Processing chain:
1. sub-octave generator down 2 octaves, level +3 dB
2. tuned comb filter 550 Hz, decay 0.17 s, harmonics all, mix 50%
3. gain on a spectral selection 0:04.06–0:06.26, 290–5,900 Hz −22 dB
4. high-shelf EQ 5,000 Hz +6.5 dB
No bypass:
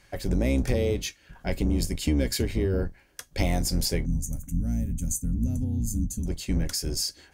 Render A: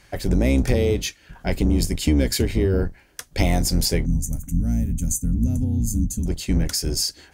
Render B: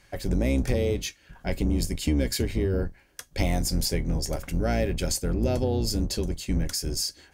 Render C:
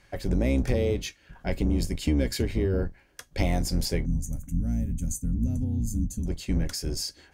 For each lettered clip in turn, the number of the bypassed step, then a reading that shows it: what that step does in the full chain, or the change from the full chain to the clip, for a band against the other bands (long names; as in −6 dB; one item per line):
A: 2, change in integrated loudness +5.5 LU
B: 3, 1 kHz band +3.0 dB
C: 4, 8 kHz band −4.5 dB